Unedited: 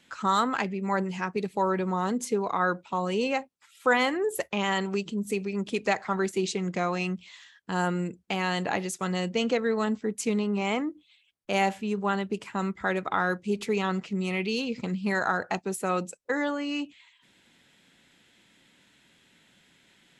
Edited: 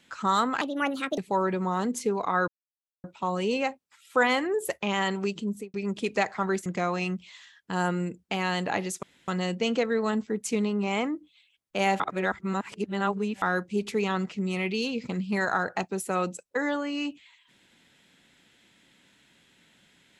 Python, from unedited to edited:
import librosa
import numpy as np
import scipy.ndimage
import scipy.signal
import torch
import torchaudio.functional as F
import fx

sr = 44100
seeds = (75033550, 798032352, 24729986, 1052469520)

y = fx.studio_fade_out(x, sr, start_s=5.19, length_s=0.25)
y = fx.edit(y, sr, fx.speed_span(start_s=0.61, length_s=0.83, speed=1.46),
    fx.insert_silence(at_s=2.74, length_s=0.56),
    fx.cut(start_s=6.36, length_s=0.29),
    fx.insert_room_tone(at_s=9.02, length_s=0.25),
    fx.reverse_span(start_s=11.74, length_s=1.42), tone=tone)